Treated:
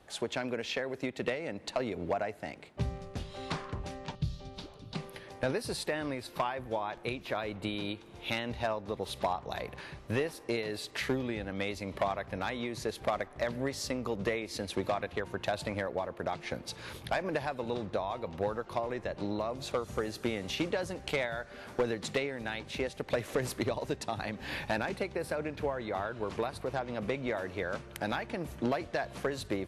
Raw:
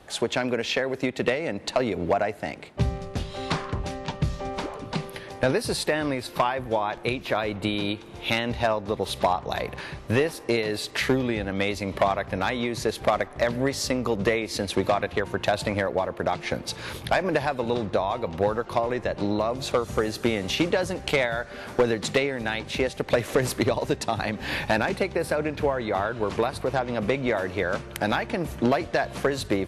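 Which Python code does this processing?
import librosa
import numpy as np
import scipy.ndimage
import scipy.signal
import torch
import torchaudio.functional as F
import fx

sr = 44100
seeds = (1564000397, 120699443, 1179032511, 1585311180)

y = fx.graphic_eq(x, sr, hz=(125, 250, 500, 1000, 2000, 4000, 8000), db=(4, -4, -7, -9, -10, 8, -7), at=(4.15, 4.95))
y = y * 10.0 ** (-9.0 / 20.0)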